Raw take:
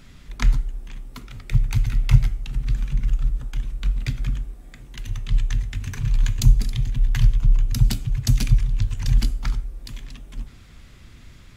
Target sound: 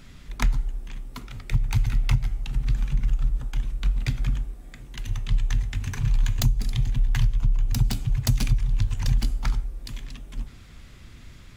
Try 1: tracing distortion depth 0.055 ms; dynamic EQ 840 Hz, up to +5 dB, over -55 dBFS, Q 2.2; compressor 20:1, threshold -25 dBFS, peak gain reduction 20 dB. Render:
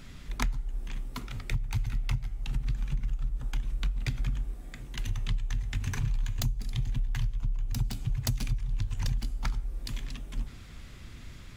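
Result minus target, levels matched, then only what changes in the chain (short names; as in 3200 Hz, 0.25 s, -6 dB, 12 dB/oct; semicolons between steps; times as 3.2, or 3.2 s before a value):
compressor: peak gain reduction +9 dB
change: compressor 20:1, threshold -15.5 dBFS, peak gain reduction 11 dB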